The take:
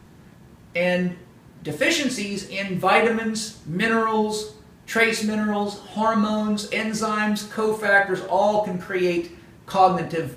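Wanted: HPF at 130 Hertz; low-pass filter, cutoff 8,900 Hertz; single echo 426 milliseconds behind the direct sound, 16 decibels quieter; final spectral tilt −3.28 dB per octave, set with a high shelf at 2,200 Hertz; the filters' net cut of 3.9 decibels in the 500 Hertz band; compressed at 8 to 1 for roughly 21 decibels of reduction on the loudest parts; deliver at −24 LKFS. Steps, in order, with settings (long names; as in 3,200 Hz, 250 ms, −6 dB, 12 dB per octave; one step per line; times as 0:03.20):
high-pass filter 130 Hz
low-pass filter 8,900 Hz
parametric band 500 Hz −5.5 dB
high-shelf EQ 2,200 Hz +7.5 dB
downward compressor 8 to 1, threshold −34 dBFS
single-tap delay 426 ms −16 dB
level +12.5 dB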